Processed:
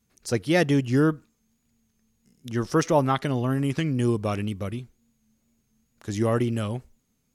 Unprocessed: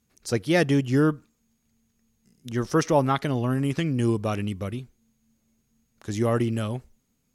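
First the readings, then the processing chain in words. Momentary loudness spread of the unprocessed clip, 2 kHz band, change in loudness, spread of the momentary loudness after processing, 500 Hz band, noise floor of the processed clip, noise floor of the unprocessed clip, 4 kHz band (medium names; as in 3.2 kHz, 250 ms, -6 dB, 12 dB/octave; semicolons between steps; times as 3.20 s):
13 LU, 0.0 dB, 0.0 dB, 13 LU, 0.0 dB, -72 dBFS, -72 dBFS, 0.0 dB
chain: wow and flutter 50 cents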